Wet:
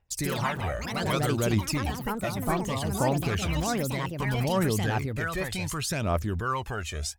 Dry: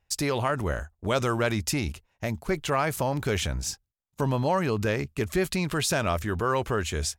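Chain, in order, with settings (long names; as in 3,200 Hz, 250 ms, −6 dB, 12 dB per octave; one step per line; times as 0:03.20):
phase shifter 0.65 Hz, delay 1.7 ms, feedback 63%
time-frequency box erased 0:02.61–0:03.01, 1,200–5,700 Hz
delay with pitch and tempo change per echo 88 ms, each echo +4 semitones, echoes 3
level −6 dB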